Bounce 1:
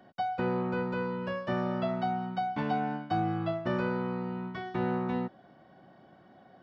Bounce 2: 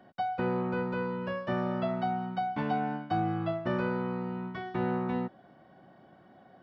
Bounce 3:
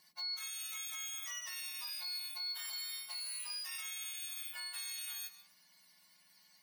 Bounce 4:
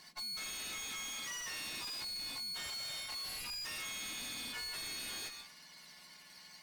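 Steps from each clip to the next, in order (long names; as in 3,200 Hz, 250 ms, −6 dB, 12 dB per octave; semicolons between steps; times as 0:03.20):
bass and treble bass 0 dB, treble −5 dB
frequency axis turned over on the octave scale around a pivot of 1,800 Hz; brickwall limiter −32 dBFS, peak gain reduction 10 dB; on a send at −12 dB: convolution reverb RT60 0.70 s, pre-delay 100 ms; on the sum: level −2.5 dB
running median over 3 samples; tube saturation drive 54 dB, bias 0.4; linearly interpolated sample-rate reduction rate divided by 2×; level +14 dB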